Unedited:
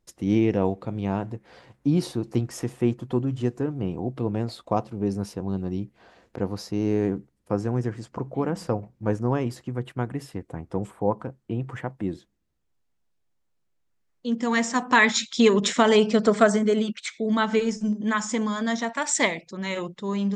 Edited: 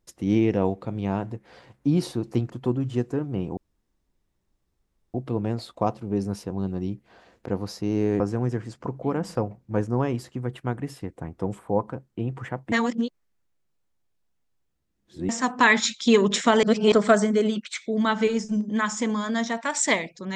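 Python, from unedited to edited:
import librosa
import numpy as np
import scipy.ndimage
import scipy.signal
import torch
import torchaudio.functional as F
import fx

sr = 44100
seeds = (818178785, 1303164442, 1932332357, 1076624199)

y = fx.edit(x, sr, fx.cut(start_s=2.5, length_s=0.47),
    fx.insert_room_tone(at_s=4.04, length_s=1.57),
    fx.cut(start_s=7.1, length_s=0.42),
    fx.reverse_span(start_s=12.04, length_s=2.57),
    fx.reverse_span(start_s=15.95, length_s=0.29), tone=tone)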